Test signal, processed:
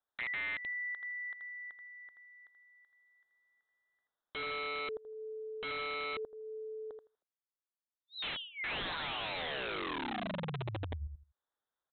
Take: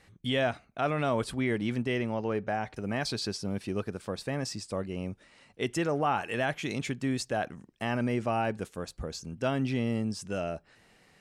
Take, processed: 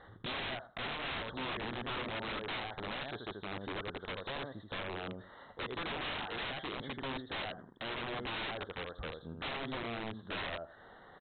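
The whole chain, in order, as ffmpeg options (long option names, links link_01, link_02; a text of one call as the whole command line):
ffmpeg -i in.wav -af "asuperstop=centerf=2500:order=4:qfactor=1.1,equalizer=frequency=180:width=0.6:gain=-10,aecho=1:1:81|162|243:0.447|0.067|0.0101,acompressor=threshold=-51dB:ratio=2.5,lowshelf=frequency=100:gain=-8.5,aresample=8000,aeval=exprs='(mod(188*val(0)+1,2)-1)/188':channel_layout=same,aresample=44100,volume=11.5dB" out.wav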